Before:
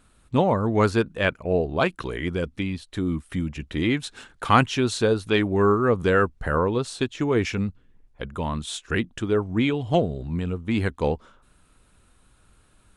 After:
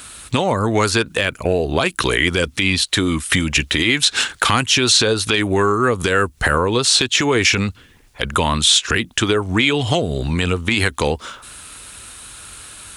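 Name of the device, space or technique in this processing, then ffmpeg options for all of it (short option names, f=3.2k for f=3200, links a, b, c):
mastering chain: -filter_complex "[0:a]highpass=51,equalizer=f=180:t=o:w=0.77:g=-4,acrossover=split=420|7100[a][b][c];[a]acompressor=threshold=-29dB:ratio=4[d];[b]acompressor=threshold=-32dB:ratio=4[e];[c]acompressor=threshold=-54dB:ratio=4[f];[d][e][f]amix=inputs=3:normalize=0,acompressor=threshold=-33dB:ratio=2,tiltshelf=f=1.5k:g=-8,asoftclip=type=hard:threshold=-18.5dB,alimiter=level_in=25dB:limit=-1dB:release=50:level=0:latency=1,volume=-2.5dB"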